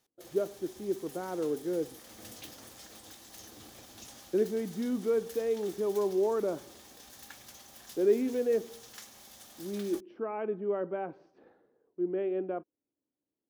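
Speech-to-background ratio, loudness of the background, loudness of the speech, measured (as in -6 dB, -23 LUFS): 17.0 dB, -49.5 LUFS, -32.5 LUFS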